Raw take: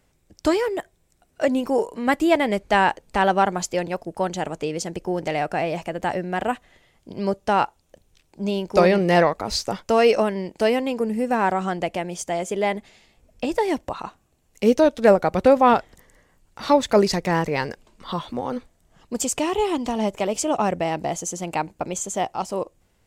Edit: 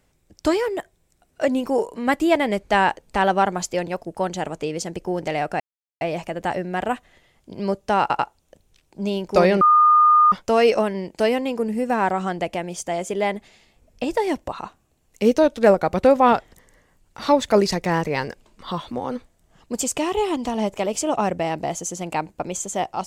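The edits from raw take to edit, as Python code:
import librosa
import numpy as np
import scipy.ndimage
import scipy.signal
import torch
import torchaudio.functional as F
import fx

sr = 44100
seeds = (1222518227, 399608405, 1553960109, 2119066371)

y = fx.edit(x, sr, fx.insert_silence(at_s=5.6, length_s=0.41),
    fx.stutter(start_s=7.6, slice_s=0.09, count=3),
    fx.bleep(start_s=9.02, length_s=0.71, hz=1220.0, db=-10.5), tone=tone)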